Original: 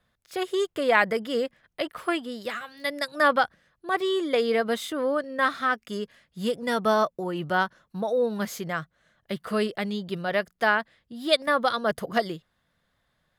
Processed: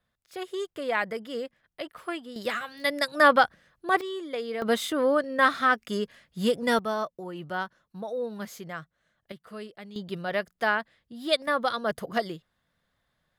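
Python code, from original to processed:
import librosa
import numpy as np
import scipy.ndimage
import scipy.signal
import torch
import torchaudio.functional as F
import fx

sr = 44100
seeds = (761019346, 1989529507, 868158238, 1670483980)

y = fx.gain(x, sr, db=fx.steps((0.0, -7.0), (2.36, 2.5), (4.01, -9.0), (4.62, 2.5), (6.79, -7.5), (9.32, -14.5), (9.96, -3.0)))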